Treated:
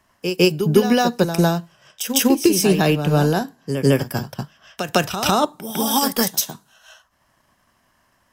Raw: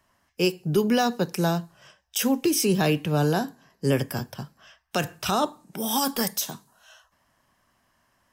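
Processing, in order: transient shaper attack +5 dB, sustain -5 dB; reverse echo 0.154 s -8.5 dB; gain +4.5 dB

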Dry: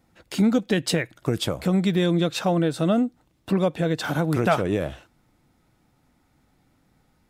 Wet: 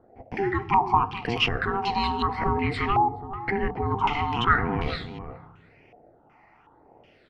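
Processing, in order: in parallel at +2 dB: negative-ratio compressor -32 dBFS, ratio -1; on the sum: ring modulator 590 Hz; phaser stages 8, 0.89 Hz, lowest notch 460–1200 Hz; echo 0.422 s -11.5 dB; on a send at -15 dB: reverb RT60 1.1 s, pre-delay 3 ms; on the sum: stepped low-pass 2.7 Hz 730–3900 Hz; gain -1.5 dB

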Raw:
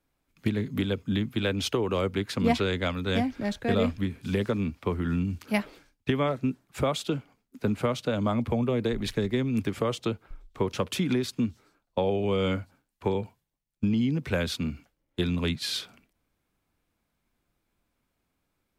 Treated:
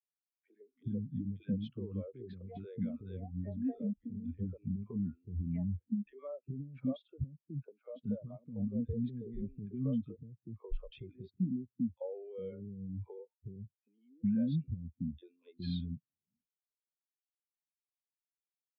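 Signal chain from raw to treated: LPF 3700 Hz 12 dB/oct; limiter -22.5 dBFS, peak gain reduction 11 dB; compressor 4:1, threshold -38 dBFS, peak gain reduction 10.5 dB; three bands offset in time highs, mids, lows 40/410 ms, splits 360/1200 Hz; spectral expander 2.5:1; gain +2.5 dB

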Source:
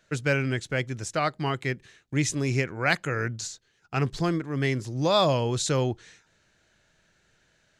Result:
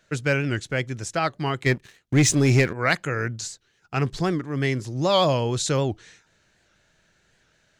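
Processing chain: 1.66–2.73 sample leveller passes 2; record warp 78 rpm, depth 160 cents; gain +2 dB

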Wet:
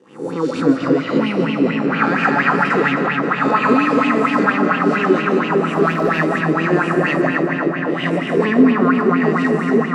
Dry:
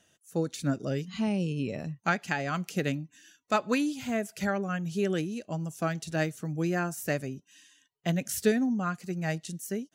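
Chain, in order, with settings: spectral swells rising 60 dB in 0.66 s; de-esser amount 85%; 8.18–9.59 tilt -1.5 dB/oct; vocal rider within 3 dB 2 s; sample leveller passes 2; speaker cabinet 140–7800 Hz, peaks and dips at 260 Hz +10 dB, 630 Hz -9 dB, 1100 Hz +8 dB, 1900 Hz +4 dB, 3400 Hz -4 dB, 6400 Hz -9 dB; 5.74–6.25 backlash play -28 dBFS; darkening echo 0.264 s, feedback 85%, low-pass 4300 Hz, level -3 dB; on a send at -6 dB: reverb RT60 0.35 s, pre-delay 0.105 s; on the sum: LFO bell 4.3 Hz 370–3000 Hz +15 dB; gain -4.5 dB

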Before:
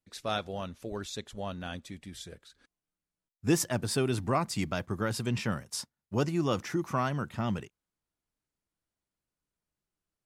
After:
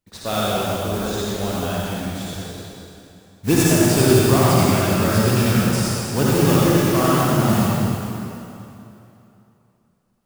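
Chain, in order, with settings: modulation noise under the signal 11 dB; in parallel at -7 dB: sample-rate reducer 2000 Hz; on the sum: reverb RT60 2.9 s, pre-delay 48 ms, DRR -7 dB; gain +4 dB

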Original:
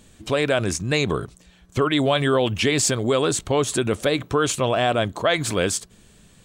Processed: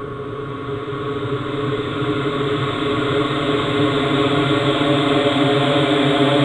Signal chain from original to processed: low-pass opened by the level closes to 1100 Hz, open at -16 dBFS; Paulstretch 12×, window 1.00 s, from 1.51; gain +4 dB

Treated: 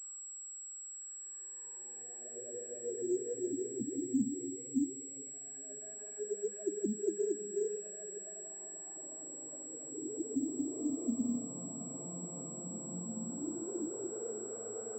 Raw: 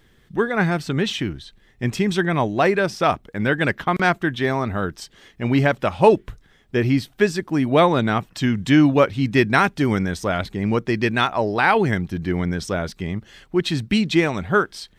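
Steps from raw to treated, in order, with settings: Paulstretch 8.9×, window 0.50 s, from 6.44; auto-wah 210–1300 Hz, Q 14, down, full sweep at -12 dBFS; pulse-width modulation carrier 7700 Hz; gain -7.5 dB

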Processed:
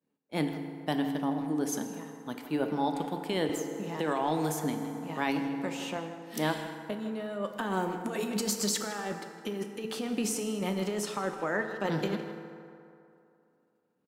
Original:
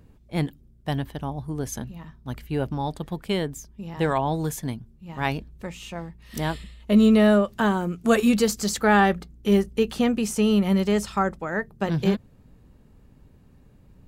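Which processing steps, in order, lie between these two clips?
HPF 200 Hz 24 dB/oct; expander -48 dBFS; negative-ratio compressor -26 dBFS, ratio -1; speakerphone echo 0.16 s, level -11 dB; FDN reverb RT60 2.7 s, low-frequency decay 0.8×, high-frequency decay 0.5×, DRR 5.5 dB; 3.49–5.97 three-band squash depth 40%; gain -5.5 dB

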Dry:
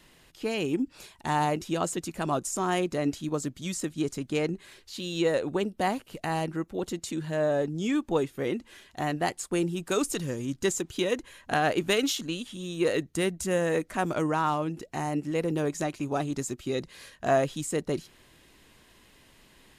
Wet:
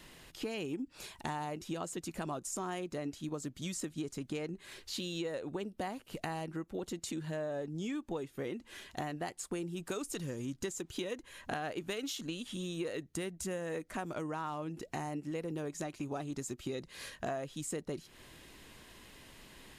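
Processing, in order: compressor 6:1, threshold -39 dBFS, peak gain reduction 18.5 dB; gain +2.5 dB

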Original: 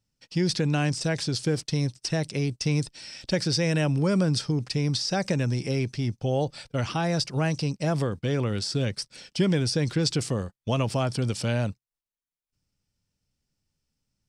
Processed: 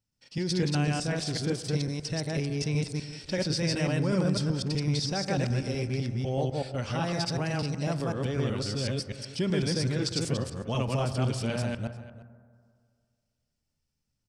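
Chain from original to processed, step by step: reverse delay 0.125 s, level 0 dB; outdoor echo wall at 60 m, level -16 dB; reverb RT60 2.1 s, pre-delay 6 ms, DRR 11.5 dB; gain -6 dB

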